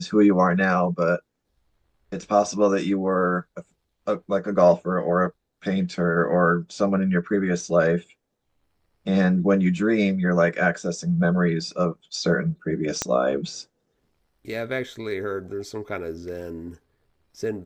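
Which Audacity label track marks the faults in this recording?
13.020000	13.020000	pop -9 dBFS

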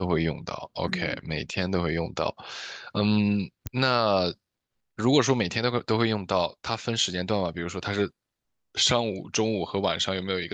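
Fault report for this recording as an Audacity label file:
3.670000	3.670000	pop -16 dBFS

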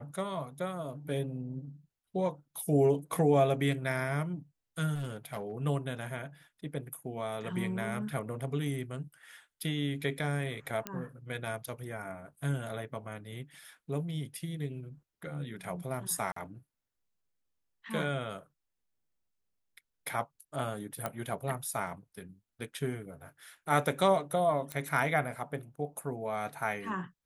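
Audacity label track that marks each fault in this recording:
4.940000	5.520000	clipped -32.5 dBFS
10.870000	10.870000	pop -18 dBFS
16.320000	16.360000	gap 44 ms
21.060000	21.060000	pop -19 dBFS
24.720000	24.720000	pop -20 dBFS

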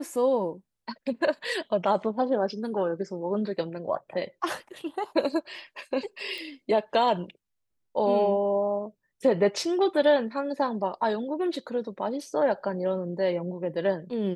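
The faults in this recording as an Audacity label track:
6.380000	6.380000	pop

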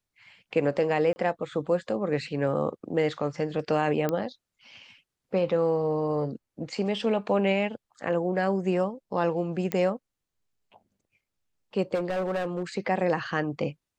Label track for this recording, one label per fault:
1.130000	1.160000	gap 30 ms
4.090000	4.090000	pop -14 dBFS
9.720000	9.720000	pop -13 dBFS
11.940000	12.630000	clipped -24.5 dBFS

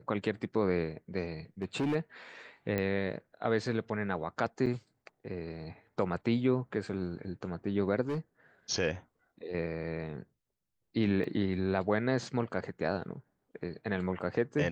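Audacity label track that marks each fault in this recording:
1.620000	1.960000	clipped -27 dBFS
2.780000	2.780000	pop -19 dBFS
4.660000	4.670000	gap 5.7 ms
8.080000	8.180000	clipped -29 dBFS
11.240000	11.240000	gap 2.2 ms

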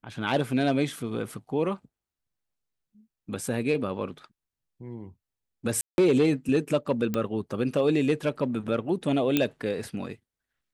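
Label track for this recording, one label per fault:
5.810000	5.980000	gap 0.171 s
7.140000	7.140000	pop -15 dBFS
9.370000	9.370000	pop -8 dBFS

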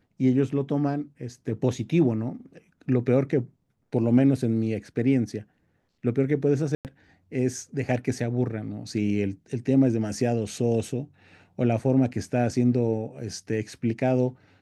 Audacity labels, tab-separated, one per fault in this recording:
6.750000	6.850000	gap 98 ms

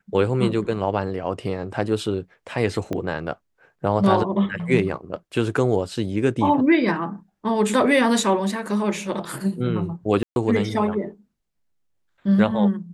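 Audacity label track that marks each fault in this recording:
2.930000	2.930000	pop -15 dBFS
10.230000	10.360000	gap 0.131 s

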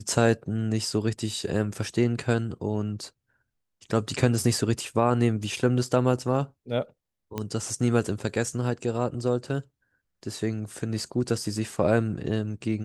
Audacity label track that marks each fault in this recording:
7.380000	7.380000	pop -16 dBFS

